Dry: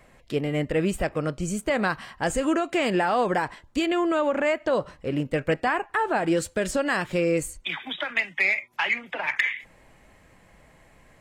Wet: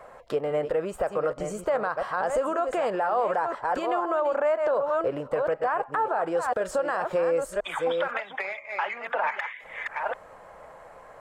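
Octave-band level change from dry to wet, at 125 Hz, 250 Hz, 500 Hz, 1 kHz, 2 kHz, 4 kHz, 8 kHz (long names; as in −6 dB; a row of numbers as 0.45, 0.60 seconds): −12.0, −10.5, +1.0, +1.5, −6.5, −10.0, −9.0 decibels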